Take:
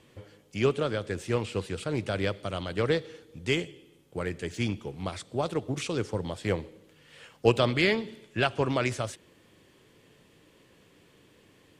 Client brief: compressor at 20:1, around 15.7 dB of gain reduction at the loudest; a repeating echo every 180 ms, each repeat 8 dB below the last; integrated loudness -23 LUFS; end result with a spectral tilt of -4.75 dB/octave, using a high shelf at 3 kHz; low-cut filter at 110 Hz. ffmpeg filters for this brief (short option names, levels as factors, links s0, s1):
-af "highpass=110,highshelf=f=3000:g=-4,acompressor=threshold=0.0282:ratio=20,aecho=1:1:180|360|540|720|900:0.398|0.159|0.0637|0.0255|0.0102,volume=5.31"